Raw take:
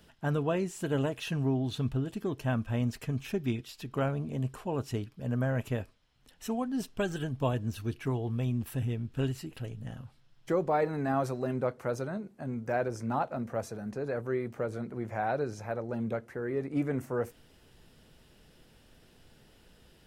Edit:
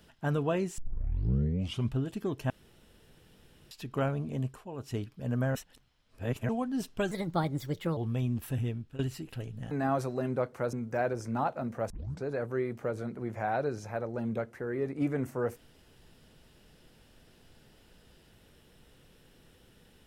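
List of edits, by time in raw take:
0.78 s: tape start 1.15 s
2.50–3.71 s: room tone
4.40–5.00 s: dip -9 dB, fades 0.24 s
5.55–6.49 s: reverse
7.11–8.21 s: speed 128%
8.94–9.23 s: fade out, to -19 dB
9.95–10.96 s: delete
11.98–12.48 s: delete
13.65 s: tape start 0.33 s

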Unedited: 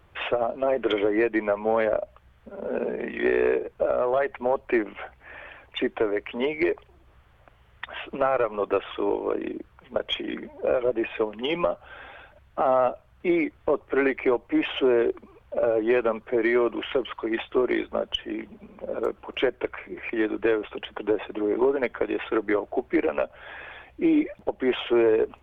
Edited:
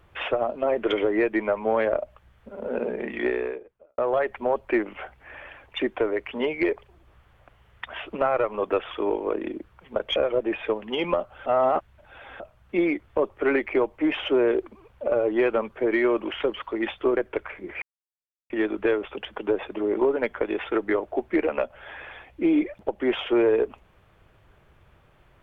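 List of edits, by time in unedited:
3.18–3.98 s: fade out quadratic
10.16–10.67 s: delete
11.97–12.91 s: reverse
17.68–19.45 s: delete
20.10 s: insert silence 0.68 s

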